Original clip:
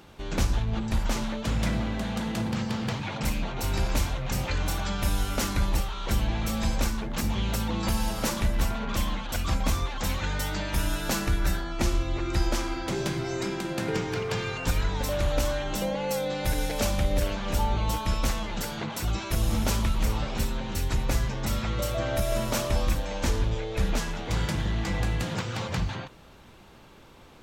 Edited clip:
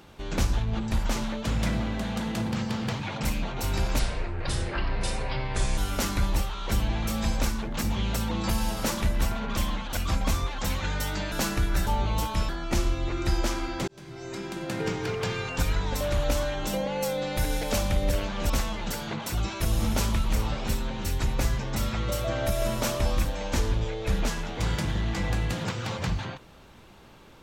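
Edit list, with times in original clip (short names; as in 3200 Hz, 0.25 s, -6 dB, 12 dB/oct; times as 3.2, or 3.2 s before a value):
3.99–5.17 speed 66%
10.71–11.02 cut
12.96–14.33 fade in equal-power
17.58–18.2 move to 11.57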